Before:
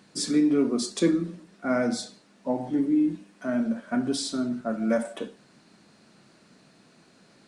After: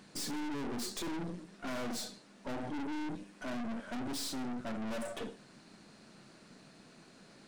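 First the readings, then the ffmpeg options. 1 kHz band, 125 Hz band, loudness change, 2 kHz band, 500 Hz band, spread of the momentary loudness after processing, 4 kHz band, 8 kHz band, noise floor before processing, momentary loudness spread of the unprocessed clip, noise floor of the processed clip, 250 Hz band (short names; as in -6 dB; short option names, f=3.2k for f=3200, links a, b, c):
-6.5 dB, -9.5 dB, -13.0 dB, -7.5 dB, -14.0 dB, 19 LU, -7.5 dB, -8.0 dB, -59 dBFS, 13 LU, -59 dBFS, -14.5 dB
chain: -af "aeval=exprs='(tanh(100*val(0)+0.6)-tanh(0.6))/100':c=same,volume=2.5dB"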